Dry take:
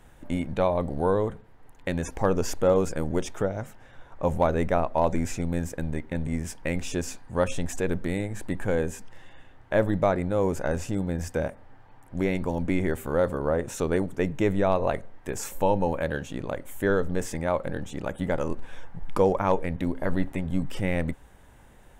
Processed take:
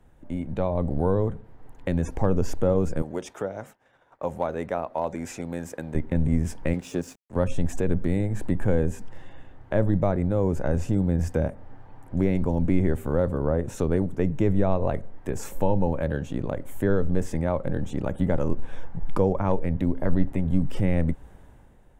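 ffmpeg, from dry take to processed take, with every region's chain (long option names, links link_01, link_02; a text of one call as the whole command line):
ffmpeg -i in.wav -filter_complex "[0:a]asettb=1/sr,asplit=3[link_01][link_02][link_03];[link_01]atrim=end=3.024[link_04];[link_02]atrim=start=3.02:end=5.95,asetpts=PTS-STARTPTS,afade=type=in:duration=0.004:curve=qsin,afade=type=out:start_time=2.926:duration=0.004:curve=qsin,highpass=frequency=710:poles=1,agate=range=-33dB:threshold=-50dB:ratio=3:release=100:detection=peak[link_05];[link_03]atrim=start=5.946[link_06];[link_04][link_05]acrossfade=duration=0.004:curve1=hsin:curve2=qsin[link_07];[link_07][link_06]acrossfade=duration=0.004:curve1=qsin:curve2=hsin,asettb=1/sr,asplit=3[link_08][link_09][link_10];[link_08]atrim=end=6.734[link_11];[link_09]atrim=start=6.73:end=7.36,asetpts=PTS-STARTPTS,afade=type=in:duration=0.004:curve=qsin,afade=type=out:start_time=0.626:duration=0.004:curve=qsin,highpass=170,aeval=exprs='sgn(val(0))*max(abs(val(0))-0.00562,0)':channel_layout=same[link_12];[link_10]atrim=start=7.356[link_13];[link_11][link_12]acrossfade=duration=0.004:curve1=hsin:curve2=qsin[link_14];[link_14][link_13]acrossfade=duration=0.004:curve1=qsin:curve2=hsin,dynaudnorm=framelen=110:gausssize=11:maxgain=11.5dB,tiltshelf=frequency=970:gain=5,acrossover=split=180[link_15][link_16];[link_16]acompressor=threshold=-24dB:ratio=1.5[link_17];[link_15][link_17]amix=inputs=2:normalize=0,volume=-7.5dB" out.wav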